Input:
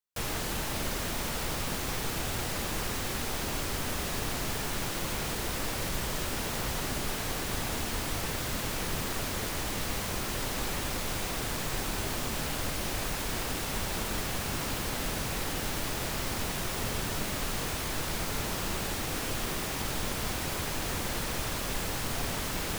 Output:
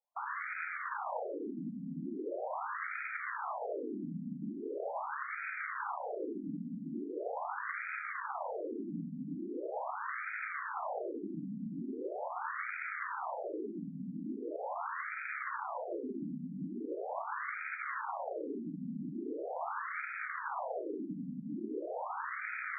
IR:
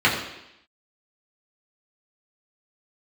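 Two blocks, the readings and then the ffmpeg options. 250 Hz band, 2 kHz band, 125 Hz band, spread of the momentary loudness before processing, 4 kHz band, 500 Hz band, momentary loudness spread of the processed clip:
-3.0 dB, -3.5 dB, -14.0 dB, 0 LU, under -40 dB, -3.0 dB, 3 LU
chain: -filter_complex "[0:a]acrossover=split=1000|7600[a][b][c];[a]acompressor=threshold=-36dB:ratio=4[d];[b]acompressor=threshold=-54dB:ratio=4[e];[c]acompressor=threshold=-48dB:ratio=4[f];[d][e][f]amix=inputs=3:normalize=0,aeval=exprs='(mod(56.2*val(0)+1,2)-1)/56.2':c=same,afftfilt=real='re*between(b*sr/1024,200*pow(1800/200,0.5+0.5*sin(2*PI*0.41*pts/sr))/1.41,200*pow(1800/200,0.5+0.5*sin(2*PI*0.41*pts/sr))*1.41)':imag='im*between(b*sr/1024,200*pow(1800/200,0.5+0.5*sin(2*PI*0.41*pts/sr))/1.41,200*pow(1800/200,0.5+0.5*sin(2*PI*0.41*pts/sr))*1.41)':win_size=1024:overlap=0.75,volume=11.5dB"

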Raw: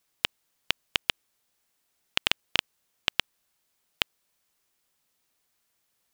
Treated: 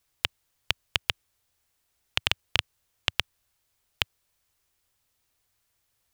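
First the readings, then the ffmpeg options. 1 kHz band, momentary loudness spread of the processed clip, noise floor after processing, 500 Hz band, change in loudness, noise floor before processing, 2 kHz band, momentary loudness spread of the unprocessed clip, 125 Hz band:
0.0 dB, 5 LU, -75 dBFS, -0.5 dB, 0.0 dB, -75 dBFS, 0.0 dB, 5 LU, +8.0 dB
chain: -af "lowshelf=f=130:t=q:w=1.5:g=9.5"

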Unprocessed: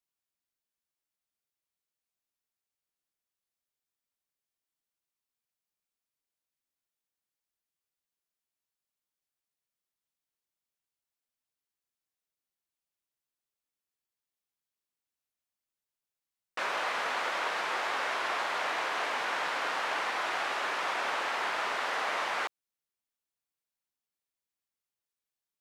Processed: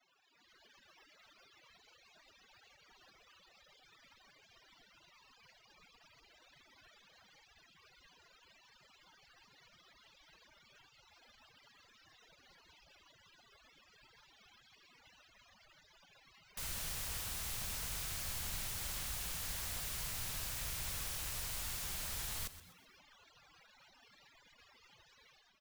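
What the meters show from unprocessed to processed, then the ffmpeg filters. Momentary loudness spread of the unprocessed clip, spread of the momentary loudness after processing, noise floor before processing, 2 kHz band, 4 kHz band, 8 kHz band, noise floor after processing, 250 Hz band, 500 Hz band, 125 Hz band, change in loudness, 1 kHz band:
1 LU, 1 LU, under -85 dBFS, -17.0 dB, -7.0 dB, +6.0 dB, -68 dBFS, -7.0 dB, -19.5 dB, n/a, -8.5 dB, -21.5 dB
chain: -filter_complex "[0:a]aeval=exprs='val(0)+0.5*0.00891*sgn(val(0))':c=same,lowpass=f=8.2k:w=0.5412,lowpass=f=8.2k:w=1.3066,afftfilt=real='re*gte(hypot(re,im),0.00355)':imag='im*gte(hypot(re,im),0.00355)':win_size=1024:overlap=0.75,afwtdn=0.00631,acrossover=split=200 4700:gain=0.141 1 0.1[a][b][c];[a][b][c]amix=inputs=3:normalize=0,acrossover=split=160[d][e];[e]acompressor=threshold=-38dB:ratio=8[f];[d][f]amix=inputs=2:normalize=0,alimiter=level_in=14dB:limit=-24dB:level=0:latency=1:release=12,volume=-14dB,dynaudnorm=f=180:g=5:m=12dB,aeval=exprs='(mod(112*val(0)+1,2)-1)/112':c=same,acrusher=bits=4:mode=log:mix=0:aa=0.000001,asubboost=boost=9:cutoff=100,asplit=5[g][h][i][j][k];[h]adelay=126,afreqshift=-92,volume=-14dB[l];[i]adelay=252,afreqshift=-184,volume=-22.2dB[m];[j]adelay=378,afreqshift=-276,volume=-30.4dB[n];[k]adelay=504,afreqshift=-368,volume=-38.5dB[o];[g][l][m][n][o]amix=inputs=5:normalize=0,volume=3dB"

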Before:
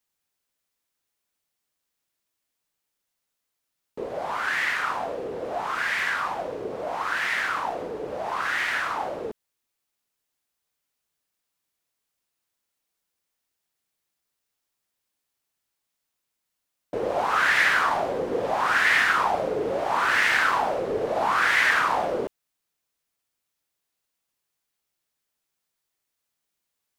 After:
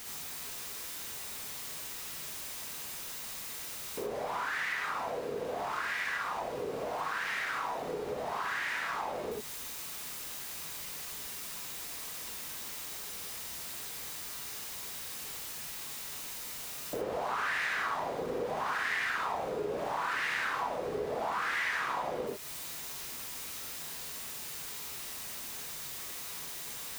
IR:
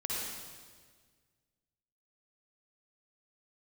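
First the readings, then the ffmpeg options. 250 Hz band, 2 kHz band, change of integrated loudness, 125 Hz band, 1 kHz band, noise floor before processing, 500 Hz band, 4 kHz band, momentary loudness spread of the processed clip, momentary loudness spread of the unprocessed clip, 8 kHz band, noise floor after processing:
-7.0 dB, -10.5 dB, -12.0 dB, -5.0 dB, -9.0 dB, -82 dBFS, -7.5 dB, -6.0 dB, 7 LU, 13 LU, +4.0 dB, -42 dBFS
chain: -filter_complex "[0:a]aeval=exprs='val(0)+0.5*0.02*sgn(val(0))':c=same[a];[1:a]atrim=start_sample=2205,atrim=end_sample=4410[b];[a][b]afir=irnorm=-1:irlink=0,acompressor=threshold=-34dB:ratio=2.5,volume=-2dB"

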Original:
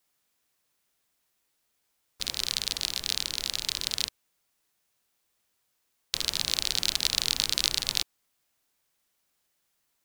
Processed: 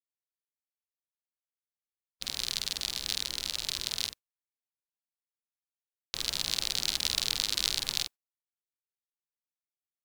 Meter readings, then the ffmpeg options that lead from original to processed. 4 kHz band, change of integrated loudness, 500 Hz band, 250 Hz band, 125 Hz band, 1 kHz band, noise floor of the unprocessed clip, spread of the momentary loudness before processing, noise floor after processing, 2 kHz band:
-3.0 dB, -3.0 dB, -3.0 dB, -3.0 dB, -3.0 dB, -3.0 dB, -76 dBFS, 7 LU, under -85 dBFS, -3.0 dB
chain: -filter_complex "[0:a]agate=range=-32dB:threshold=-39dB:ratio=16:detection=peak,asplit=2[a][b];[b]adelay=48,volume=-5.5dB[c];[a][c]amix=inputs=2:normalize=0,volume=-4dB"

